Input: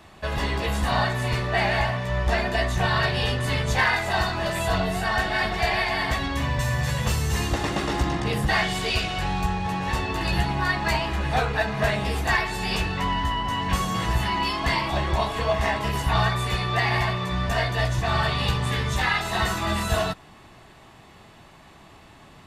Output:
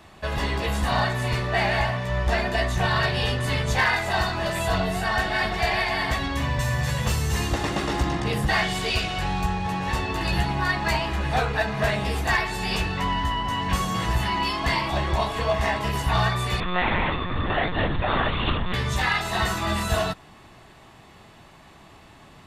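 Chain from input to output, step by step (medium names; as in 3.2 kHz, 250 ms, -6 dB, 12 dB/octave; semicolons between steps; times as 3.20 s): overload inside the chain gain 14 dB; 16.60–18.74 s: monotone LPC vocoder at 8 kHz 180 Hz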